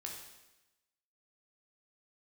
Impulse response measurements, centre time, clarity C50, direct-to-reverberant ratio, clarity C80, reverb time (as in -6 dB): 43 ms, 3.5 dB, -0.5 dB, 6.0 dB, 1.0 s